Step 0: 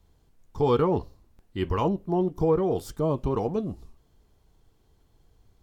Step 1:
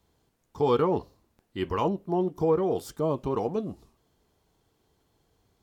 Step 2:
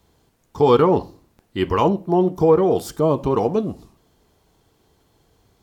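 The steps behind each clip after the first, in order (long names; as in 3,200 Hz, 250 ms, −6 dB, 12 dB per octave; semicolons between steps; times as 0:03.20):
high-pass filter 200 Hz 6 dB per octave
convolution reverb RT60 0.35 s, pre-delay 39 ms, DRR 20 dB; level +9 dB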